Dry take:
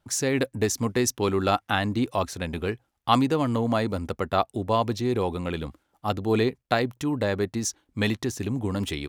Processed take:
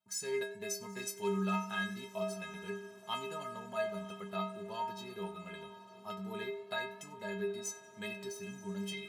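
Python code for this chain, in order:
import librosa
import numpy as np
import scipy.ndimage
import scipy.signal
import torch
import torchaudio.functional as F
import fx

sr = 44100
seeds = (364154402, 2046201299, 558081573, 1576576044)

y = scipy.signal.sosfilt(scipy.signal.butter(2, 120.0, 'highpass', fs=sr, output='sos'), x)
y = fx.peak_eq(y, sr, hz=300.0, db=-7.0, octaves=1.3)
y = fx.stiff_resonator(y, sr, f0_hz=190.0, decay_s=0.8, stiffness=0.03)
y = fx.echo_diffused(y, sr, ms=921, feedback_pct=54, wet_db=-16.0)
y = fx.echo_warbled(y, sr, ms=92, feedback_pct=51, rate_hz=2.8, cents=58, wet_db=-20.5)
y = y * 10.0 ** (6.0 / 20.0)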